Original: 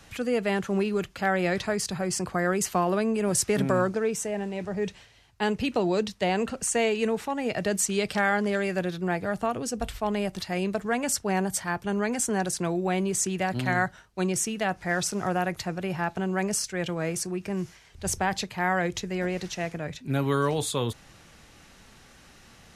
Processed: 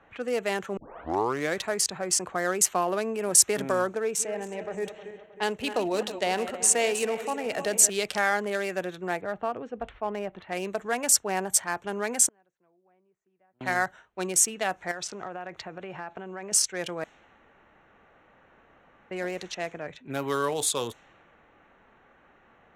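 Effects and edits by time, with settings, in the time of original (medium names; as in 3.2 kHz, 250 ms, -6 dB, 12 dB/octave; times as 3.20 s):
0.77 s: tape start 0.79 s
4.01–7.90 s: backward echo that repeats 157 ms, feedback 67%, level -10.5 dB
9.21–10.49 s: distance through air 360 m
12.27–13.61 s: inverted gate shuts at -25 dBFS, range -36 dB
14.91–16.52 s: compression 12:1, threshold -29 dBFS
17.04–19.11 s: room tone
whole clip: local Wiener filter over 9 samples; level-controlled noise filter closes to 1.6 kHz, open at -24.5 dBFS; tone controls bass -14 dB, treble +9 dB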